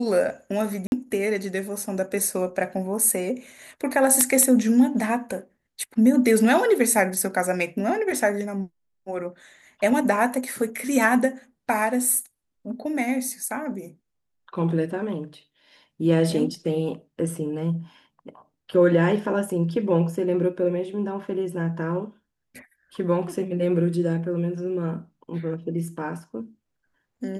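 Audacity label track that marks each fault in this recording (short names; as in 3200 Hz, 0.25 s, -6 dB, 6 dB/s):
0.870000	0.920000	gap 51 ms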